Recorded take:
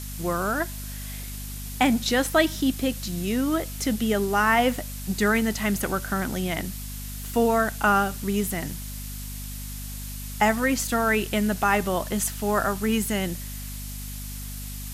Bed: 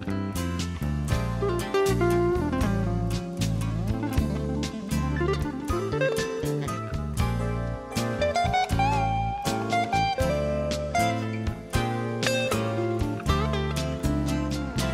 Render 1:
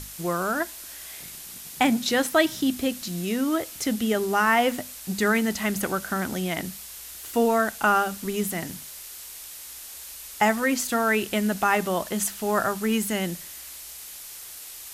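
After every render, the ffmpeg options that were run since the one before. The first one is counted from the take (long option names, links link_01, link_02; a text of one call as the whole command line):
ffmpeg -i in.wav -af "bandreject=frequency=50:width_type=h:width=6,bandreject=frequency=100:width_type=h:width=6,bandreject=frequency=150:width_type=h:width=6,bandreject=frequency=200:width_type=h:width=6,bandreject=frequency=250:width_type=h:width=6" out.wav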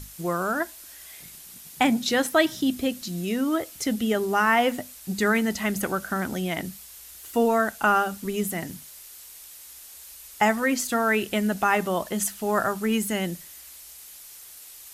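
ffmpeg -i in.wav -af "afftdn=noise_reduction=6:noise_floor=-41" out.wav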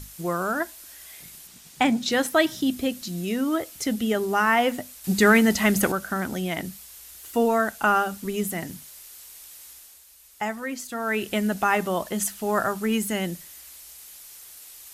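ffmpeg -i in.wav -filter_complex "[0:a]asettb=1/sr,asplit=3[link_01][link_02][link_03];[link_01]atrim=end=1.474[link_04];[link_02]atrim=start=1.47:end=2.12,asetpts=PTS-STARTPTS,afade=type=in:duration=0.004:curve=qsin,afade=type=out:start_time=0.646:duration=0.004:curve=qsin,equalizer=frequency=12000:width=1.7:gain=-10.5[link_05];[link_03]atrim=start=2.116[link_06];[link_04][link_05]acrossfade=duration=0.004:curve1=hsin:curve2=qsin[link_07];[link_07][link_06]acrossfade=duration=0.004:curve1=qsin:curve2=hsin,asettb=1/sr,asplit=3[link_08][link_09][link_10];[link_08]atrim=end=5.044[link_11];[link_09]atrim=start=5.04:end=5.92,asetpts=PTS-STARTPTS,afade=type=in:duration=0.004:curve=qsin,afade=type=out:start_time=0.876:duration=0.004:curve=qsin,acontrast=53[link_12];[link_10]atrim=start=5.916[link_13];[link_11][link_12]acrossfade=duration=0.004:curve1=hsin:curve2=qsin[link_14];[link_14][link_13]acrossfade=duration=0.004:curve1=qsin:curve2=hsin,asplit=3[link_15][link_16][link_17];[link_15]atrim=end=10.04,asetpts=PTS-STARTPTS,afade=type=out:start_time=9.67:duration=0.37:silence=0.398107[link_18];[link_16]atrim=start=10.04:end=10.94,asetpts=PTS-STARTPTS,volume=-8dB[link_19];[link_17]atrim=start=10.94,asetpts=PTS-STARTPTS,afade=type=in:duration=0.37:silence=0.398107[link_20];[link_18][link_19][link_20]concat=n=3:v=0:a=1" out.wav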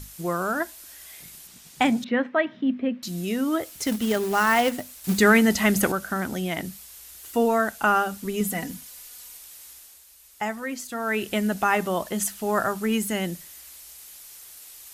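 ffmpeg -i in.wav -filter_complex "[0:a]asettb=1/sr,asplit=3[link_01][link_02][link_03];[link_01]atrim=end=2.044[link_04];[link_02]atrim=start=2.04:end=3.03,asetpts=PTS-STARTPTS,afade=type=in:duration=0.004:curve=qsin,afade=type=out:start_time=0.986:duration=0.004:curve=qsin,highpass=frequency=150:width=0.5412,highpass=frequency=150:width=1.3066,equalizer=frequency=150:width_type=q:width=4:gain=-9,equalizer=frequency=230:width_type=q:width=4:gain=7,equalizer=frequency=340:width_type=q:width=4:gain=-9,equalizer=frequency=780:width_type=q:width=4:gain=-6,equalizer=frequency=1400:width_type=q:width=4:gain=-4,lowpass=frequency=2300:width=0.5412,lowpass=frequency=2300:width=1.3066[link_05];[link_03]atrim=start=3.026[link_06];[link_04][link_05]acrossfade=duration=0.004:curve1=hsin:curve2=qsin[link_07];[link_07][link_06]acrossfade=duration=0.004:curve1=qsin:curve2=hsin,asettb=1/sr,asplit=3[link_08][link_09][link_10];[link_08]atrim=end=3.634[link_11];[link_09]atrim=start=3.63:end=5.2,asetpts=PTS-STARTPTS,afade=type=in:duration=0.004:curve=qsin,afade=type=out:start_time=1.566:duration=0.004:curve=qsin,acrusher=bits=3:mode=log:mix=0:aa=0.000001[link_12];[link_10]atrim=start=5.196[link_13];[link_11][link_12]acrossfade=duration=0.004:curve1=hsin:curve2=qsin[link_14];[link_14][link_13]acrossfade=duration=0.004:curve1=qsin:curve2=hsin,asettb=1/sr,asplit=3[link_15][link_16][link_17];[link_15]atrim=end=8.404[link_18];[link_16]atrim=start=8.4:end=9.37,asetpts=PTS-STARTPTS,afade=type=in:duration=0.004:curve=qsin,afade=type=out:start_time=0.966:duration=0.004:curve=qsin,aecho=1:1:4.1:0.65,atrim=end_sample=42777[link_19];[link_17]atrim=start=9.366[link_20];[link_18][link_19]acrossfade=duration=0.004:curve1=hsin:curve2=qsin[link_21];[link_21][link_20]acrossfade=duration=0.004:curve1=qsin:curve2=hsin" out.wav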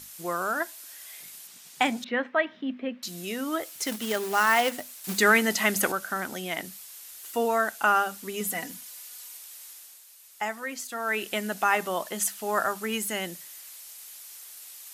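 ffmpeg -i in.wav -af "highpass=frequency=610:poles=1" out.wav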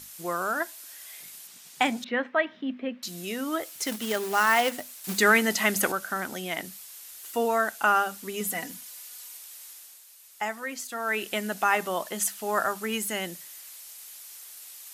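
ffmpeg -i in.wav -af anull out.wav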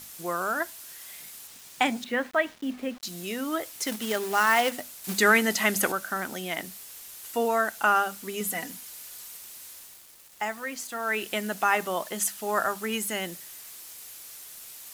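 ffmpeg -i in.wav -af "acrusher=bits=7:mix=0:aa=0.000001" out.wav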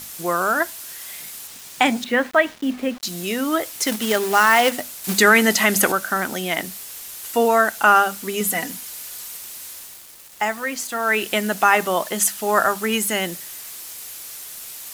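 ffmpeg -i in.wav -af "volume=8.5dB,alimiter=limit=-3dB:level=0:latency=1" out.wav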